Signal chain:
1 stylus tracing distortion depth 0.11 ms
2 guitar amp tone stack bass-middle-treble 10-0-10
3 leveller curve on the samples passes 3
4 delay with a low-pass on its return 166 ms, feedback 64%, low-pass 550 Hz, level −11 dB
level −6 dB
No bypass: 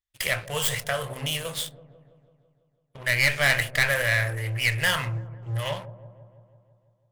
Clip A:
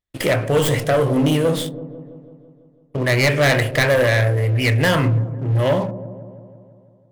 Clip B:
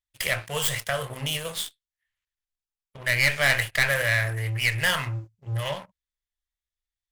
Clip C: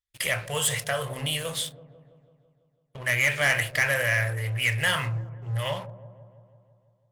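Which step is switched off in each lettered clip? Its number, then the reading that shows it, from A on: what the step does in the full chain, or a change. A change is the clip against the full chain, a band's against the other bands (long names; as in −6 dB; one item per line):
2, 250 Hz band +14.0 dB
4, echo-to-direct ratio −18.5 dB to none audible
1, change in crest factor −3.0 dB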